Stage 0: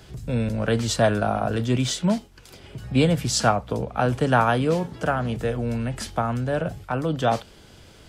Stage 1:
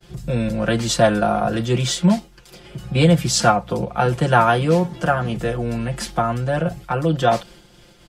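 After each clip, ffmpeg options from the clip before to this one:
-af "agate=range=-33dB:threshold=-43dB:ratio=3:detection=peak,aecho=1:1:5.7:0.89,volume=2dB"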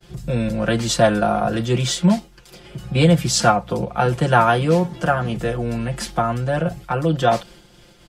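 -af anull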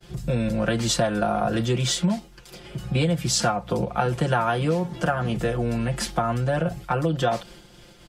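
-af "acompressor=threshold=-19dB:ratio=6"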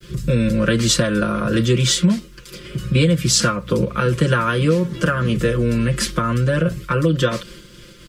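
-af "acrusher=bits=11:mix=0:aa=0.000001,asuperstop=centerf=770:order=4:qfactor=1.6,volume=7dB"

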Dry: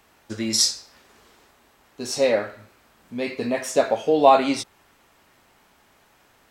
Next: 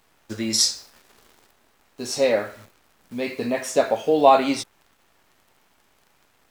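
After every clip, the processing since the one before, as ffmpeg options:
-af "acrusher=bits=9:dc=4:mix=0:aa=0.000001"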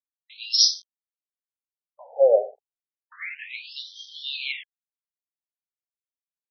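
-af "aeval=exprs='val(0)*gte(abs(val(0)),0.0141)':c=same,afftfilt=real='re*between(b*sr/1024,570*pow(4400/570,0.5+0.5*sin(2*PI*0.31*pts/sr))/1.41,570*pow(4400/570,0.5+0.5*sin(2*PI*0.31*pts/sr))*1.41)':imag='im*between(b*sr/1024,570*pow(4400/570,0.5+0.5*sin(2*PI*0.31*pts/sr))/1.41,570*pow(4400/570,0.5+0.5*sin(2*PI*0.31*pts/sr))*1.41)':win_size=1024:overlap=0.75,volume=3.5dB"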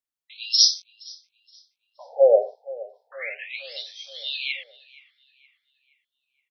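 -filter_complex "[0:a]asplit=2[a][b];[b]adelay=471,lowpass=f=2.8k:p=1,volume=-19dB,asplit=2[c][d];[d]adelay=471,lowpass=f=2.8k:p=1,volume=0.55,asplit=2[e][f];[f]adelay=471,lowpass=f=2.8k:p=1,volume=0.55,asplit=2[g][h];[h]adelay=471,lowpass=f=2.8k:p=1,volume=0.55,asplit=2[i][j];[j]adelay=471,lowpass=f=2.8k:p=1,volume=0.55[k];[a][c][e][g][i][k]amix=inputs=6:normalize=0,volume=1.5dB"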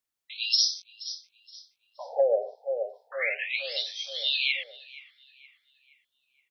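-af "acompressor=threshold=-26dB:ratio=6,volume=4.5dB"

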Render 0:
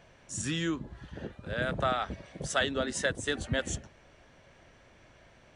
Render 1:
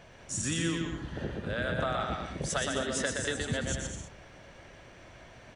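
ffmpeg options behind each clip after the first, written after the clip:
-filter_complex "[0:a]acompressor=threshold=-35dB:ratio=4,asplit=2[a][b];[b]aecho=0:1:120|204|262.8|304|332.8:0.631|0.398|0.251|0.158|0.1[c];[a][c]amix=inputs=2:normalize=0,volume=4.5dB"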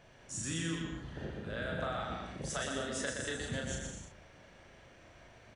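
-filter_complex "[0:a]asplit=2[a][b];[b]adelay=37,volume=-3dB[c];[a][c]amix=inputs=2:normalize=0,volume=-7.5dB"

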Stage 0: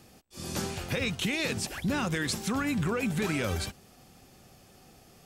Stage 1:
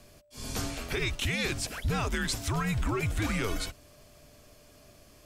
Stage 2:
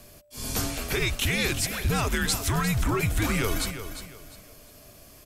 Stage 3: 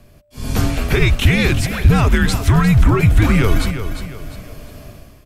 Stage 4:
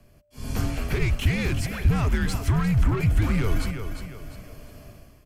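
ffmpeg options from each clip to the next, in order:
-af "aeval=exprs='val(0)+0.000794*sin(2*PI*700*n/s)':c=same,afreqshift=-110"
-af "equalizer=f=13k:t=o:w=0.77:g=9.5,aecho=1:1:352|704|1056:0.299|0.0866|0.0251,volume=4dB"
-af "bass=f=250:g=7,treble=f=4k:g=-10,dynaudnorm=f=130:g=7:m=13dB"
-filter_complex "[0:a]bandreject=f=3.7k:w=8.2,acrossover=split=170[a][b];[b]asoftclip=type=tanh:threshold=-16dB[c];[a][c]amix=inputs=2:normalize=0,volume=-8.5dB"

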